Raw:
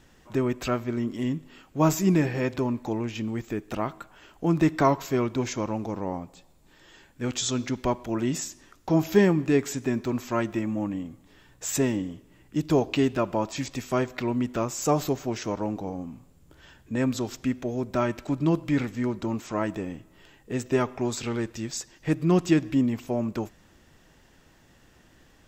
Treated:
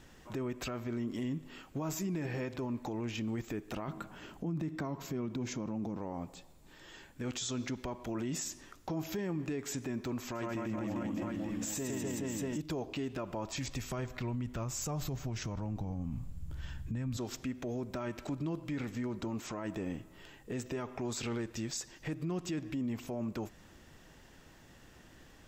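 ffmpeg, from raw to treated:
-filter_complex "[0:a]asettb=1/sr,asplit=3[s0][s1][s2];[s0]atrim=end=3.884[s3];[s1]atrim=start=3.88:end=5.97,asetpts=PTS-STARTPTS,afade=t=in:d=0.004:c=qsin,afade=t=out:st=2.086:d=0.004:c=qsin,equalizer=f=190:t=o:w=1.8:g=11.5[s4];[s2]atrim=start=5.966[s5];[s3][s4]acrossfade=d=0.004:c1=hsin:c2=qsin[s6];[s6][s5]acrossfade=d=0.004:c1=qsin:c2=hsin,asettb=1/sr,asplit=3[s7][s8][s9];[s7]atrim=end=10.244[s10];[s8]atrim=start=10.24:end=12.58,asetpts=PTS-STARTPTS,afade=t=in:d=0.004:c=qsin,afade=t=out:st=2.336:d=0.004:c=qsin,aecho=1:1:110|247.5|419.4|634.2|902.8:0.794|0.631|0.501|0.398|0.316,atrim=end_sample=103194[s11];[s9]atrim=start=12.576[s12];[s10][s11]acrossfade=d=0.004:c1=hsin:c2=qsin[s13];[s13][s12]acrossfade=d=0.004:c1=qsin:c2=hsin,asettb=1/sr,asplit=3[s14][s15][s16];[s14]atrim=end=13.144[s17];[s15]atrim=start=13.14:end=17.17,asetpts=PTS-STARTPTS,afade=t=in:d=0.004:c=qsin,afade=t=out:st=4.026:d=0.004:c=qsin,asubboost=boost=11:cutoff=130[s18];[s16]atrim=start=17.166[s19];[s17][s18]acrossfade=d=0.004:c1=hsin:c2=qsin[s20];[s20][s19]acrossfade=d=0.004:c1=qsin:c2=hsin,acompressor=threshold=0.0251:ratio=2.5,alimiter=level_in=1.78:limit=0.0631:level=0:latency=1:release=33,volume=0.562"

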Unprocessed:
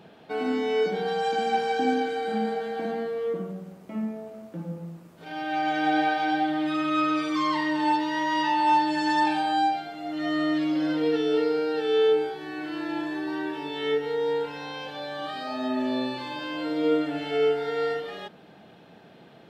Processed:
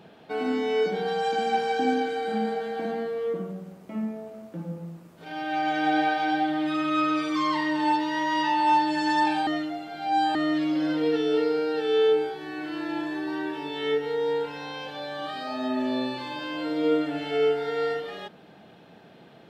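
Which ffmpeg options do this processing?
-filter_complex "[0:a]asplit=3[s0][s1][s2];[s0]atrim=end=9.472[s3];[s1]atrim=start=9.468:end=10.352,asetpts=PTS-STARTPTS,areverse[s4];[s2]atrim=start=10.348[s5];[s3][s4]acrossfade=d=0.004:c1=hsin:c2=hsin[s6];[s6][s5]acrossfade=d=0.004:c1=hsin:c2=hsin"

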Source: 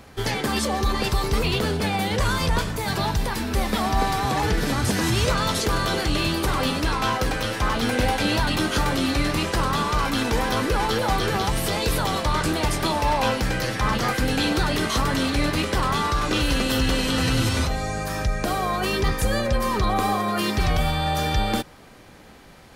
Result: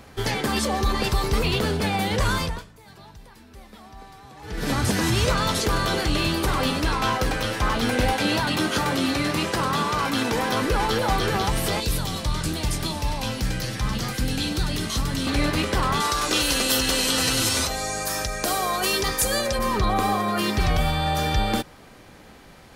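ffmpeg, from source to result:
-filter_complex "[0:a]asettb=1/sr,asplit=3[s0][s1][s2];[s0]atrim=end=8.134[s3];[s1]atrim=start=8.13:end=10.62,asetpts=PTS-STARTPTS,afade=t=in:d=0.004:c=qsin,afade=t=out:st=2.486:d=0.004:c=qsin,highpass=110[s4];[s2]atrim=start=10.616[s5];[s3][s4]acrossfade=d=0.004:c1=hsin:c2=qsin[s6];[s6][s5]acrossfade=d=0.004:c1=qsin:c2=hsin,asettb=1/sr,asplit=3[s7][s8][s9];[s7]atrim=end=11.804[s10];[s8]atrim=start=11.8:end=15.27,asetpts=PTS-STARTPTS,afade=t=in:d=0.004:c=qsin,afade=t=out:st=3.466:d=0.004:c=qsin,acrossover=split=250|3000[s11][s12][s13];[s12]acompressor=threshold=0.01:ratio=2:attack=3.2:release=140:knee=2.83:detection=peak[s14];[s11][s14][s13]amix=inputs=3:normalize=0[s15];[s9]atrim=start=15.266[s16];[s10][s15]acrossfade=d=0.004:c1=hsin:c2=qsin[s17];[s17][s16]acrossfade=d=0.004:c1=qsin:c2=hsin,asettb=1/sr,asplit=3[s18][s19][s20];[s18]atrim=end=16.004[s21];[s19]atrim=start=16:end=19.59,asetpts=PTS-STARTPTS,afade=t=in:d=0.004:c=qsin,afade=t=out:st=3.586:d=0.004:c=qsin,bass=f=250:g=-9,treble=f=4000:g=10[s22];[s20]atrim=start=19.586[s23];[s21][s22]acrossfade=d=0.004:c1=hsin:c2=qsin[s24];[s24][s23]acrossfade=d=0.004:c1=qsin:c2=hsin,asplit=3[s25][s26][s27];[s25]atrim=end=2.72,asetpts=PTS-STARTPTS,afade=t=out:st=2.38:d=0.34:c=qua:silence=0.0794328[s28];[s26]atrim=start=2.72:end=4.36,asetpts=PTS-STARTPTS,volume=0.0794[s29];[s27]atrim=start=4.36,asetpts=PTS-STARTPTS,afade=t=in:d=0.34:c=qua:silence=0.0794328[s30];[s28][s29][s30]concat=n=3:v=0:a=1"

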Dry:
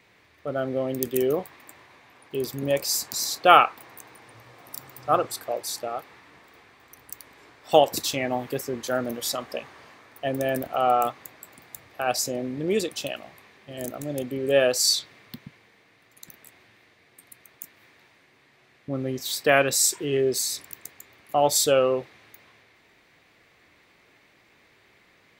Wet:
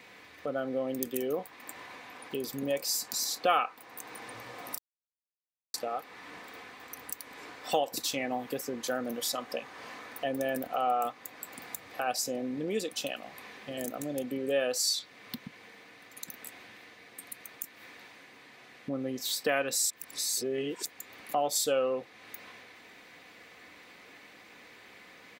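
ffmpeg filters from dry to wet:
-filter_complex "[0:a]asplit=5[s0][s1][s2][s3][s4];[s0]atrim=end=4.78,asetpts=PTS-STARTPTS,afade=t=out:st=4.776:d=0.004:c=hsin[s5];[s1]atrim=start=4.78:end=5.74,asetpts=PTS-STARTPTS,volume=0[s6];[s2]atrim=start=5.74:end=19.902,asetpts=PTS-STARTPTS,afade=t=in:d=0.004:c=hsin[s7];[s3]atrim=start=19.898:end=20.852,asetpts=PTS-STARTPTS,areverse[s8];[s4]atrim=start=20.848[s9];[s5][s6][s7]concat=n=3:v=0:a=1[s10];[s10][s8]acrossfade=d=0.004:c1=hsin:c2=hsin[s11];[s11][s9]acrossfade=d=0.004:c1=hsin:c2=hsin,acompressor=threshold=0.00562:ratio=2,highpass=f=170:p=1,aecho=1:1:4:0.35,volume=2"

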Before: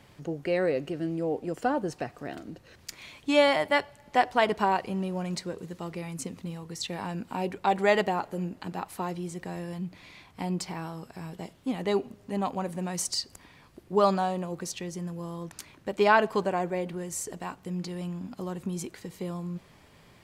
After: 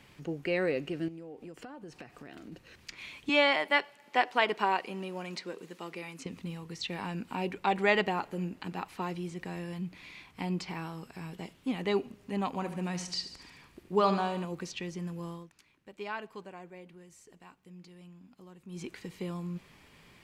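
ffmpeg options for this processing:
-filter_complex "[0:a]asettb=1/sr,asplit=3[s0][s1][s2];[s0]atrim=end=1.084[s3];[s1]atrim=start=1.08:end=2.52,asetpts=PTS-STARTPTS,afade=t=in:d=0.004:c=qsin,afade=t=out:st=1.436:d=0.004:c=qsin,acompressor=threshold=0.01:ratio=6:attack=3.2:release=140:knee=1:detection=peak[s4];[s2]atrim=start=2.516[s5];[s3][s4]acrossfade=d=0.004:c1=hsin:c2=qsin[s6];[s6][s5]acrossfade=d=0.004:c1=qsin:c2=hsin,asettb=1/sr,asplit=3[s7][s8][s9];[s7]atrim=end=3.294[s10];[s8]atrim=start=3.29:end=6.26,asetpts=PTS-STARTPTS,afade=t=in:d=0.004:c=qsin,afade=t=out:st=2.966:d=0.004:c=qsin,highpass=290[s11];[s9]atrim=start=6.256[s12];[s10][s11]acrossfade=d=0.004:c1=hsin:c2=qsin[s13];[s13][s12]acrossfade=d=0.004:c1=qsin:c2=hsin,asettb=1/sr,asplit=3[s14][s15][s16];[s14]atrim=end=12.474[s17];[s15]atrim=start=12.47:end=14.45,asetpts=PTS-STARTPTS,afade=t=in:d=0.004:c=qsin,afade=t=out:st=1.976:d=0.004:c=qsin,aecho=1:1:72|144|216|288|360|432:0.266|0.144|0.0776|0.0419|0.0226|0.0122,atrim=end_sample=87318[s18];[s16]atrim=start=14.446[s19];[s17][s18]acrossfade=d=0.004:c1=hsin:c2=qsin[s20];[s20][s19]acrossfade=d=0.004:c1=qsin:c2=hsin,asplit=3[s21][s22][s23];[s21]atrim=end=15.48,asetpts=PTS-STARTPTS,afade=t=out:st=15.29:d=0.19:silence=0.177828[s24];[s22]atrim=start=15.48:end=18.67,asetpts=PTS-STARTPTS,volume=0.178[s25];[s23]atrim=start=18.67,asetpts=PTS-STARTPTS,afade=t=in:d=0.19:silence=0.177828[s26];[s24][s25][s26]concat=n=3:v=0:a=1,acrossover=split=5500[s27][s28];[s28]acompressor=threshold=0.00112:ratio=4:attack=1:release=60[s29];[s27][s29]amix=inputs=2:normalize=0,equalizer=f=100:t=o:w=0.67:g=-5,equalizer=f=630:t=o:w=0.67:g=-5,equalizer=f=2500:t=o:w=0.67:g=5,volume=0.841"

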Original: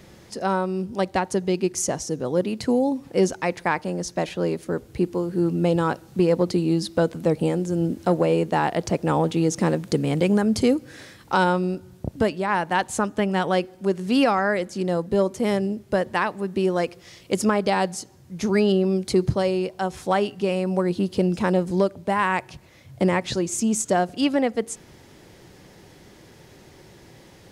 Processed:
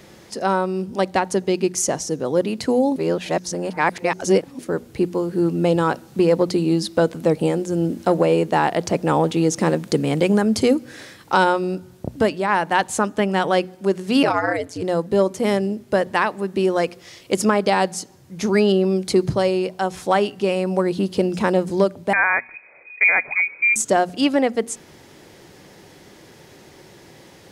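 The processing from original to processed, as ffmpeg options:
-filter_complex "[0:a]asplit=3[s0][s1][s2];[s0]afade=t=out:st=14.22:d=0.02[s3];[s1]aeval=exprs='val(0)*sin(2*PI*89*n/s)':c=same,afade=t=in:st=14.22:d=0.02,afade=t=out:st=14.81:d=0.02[s4];[s2]afade=t=in:st=14.81:d=0.02[s5];[s3][s4][s5]amix=inputs=3:normalize=0,asettb=1/sr,asplit=3[s6][s7][s8];[s6]atrim=end=22.134[s9];[s7]atrim=start=22.13:end=23.76,asetpts=PTS-STARTPTS,afade=t=in:d=0.004:c=qsin,afade=t=out:st=1.626:d=0.004:c=qsin,lowpass=f=2200:t=q:w=0.5098,lowpass=f=2200:t=q:w=0.6013,lowpass=f=2200:t=q:w=0.9,lowpass=f=2200:t=q:w=2.563,afreqshift=-2600[s10];[s8]atrim=start=23.756[s11];[s9][s10]acrossfade=d=0.004:c1=hsin:c2=qsin[s12];[s12][s11]acrossfade=d=0.004:c1=qsin:c2=hsin,asplit=3[s13][s14][s15];[s13]atrim=end=2.962[s16];[s14]atrim=start=2.958:end=4.592,asetpts=PTS-STARTPTS,areverse[s17];[s15]atrim=start=4.588[s18];[s16][s17]acrossfade=d=0.004:c1=hsin:c2=hsin[s19];[s19][s18]acrossfade=d=0.004:c1=hsin:c2=hsin,lowshelf=f=97:g=-10,bandreject=f=60:t=h:w=6,bandreject=f=120:t=h:w=6,bandreject=f=180:t=h:w=6,bandreject=f=240:t=h:w=6,volume=1.58"

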